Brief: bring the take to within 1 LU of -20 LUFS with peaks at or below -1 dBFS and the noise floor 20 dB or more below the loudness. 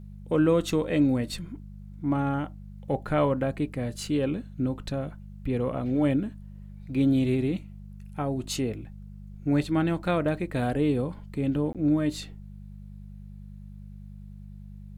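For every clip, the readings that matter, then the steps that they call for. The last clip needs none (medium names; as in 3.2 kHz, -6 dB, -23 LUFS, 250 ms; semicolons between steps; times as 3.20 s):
dropouts 1; longest dropout 17 ms; hum 50 Hz; highest harmonic 200 Hz; hum level -40 dBFS; loudness -27.5 LUFS; peak level -10.5 dBFS; loudness target -20.0 LUFS
-> interpolate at 11.73 s, 17 ms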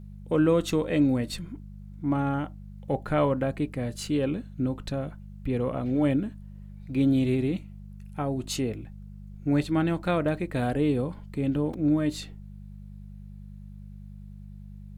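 dropouts 0; hum 50 Hz; highest harmonic 200 Hz; hum level -40 dBFS
-> de-hum 50 Hz, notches 4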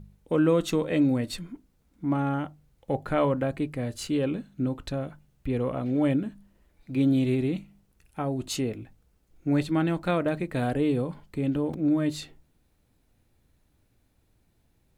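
hum not found; loudness -27.5 LUFS; peak level -10.5 dBFS; loudness target -20.0 LUFS
-> trim +7.5 dB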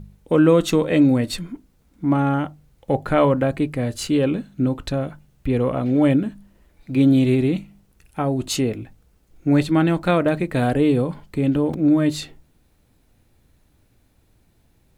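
loudness -20.0 LUFS; peak level -3.0 dBFS; noise floor -60 dBFS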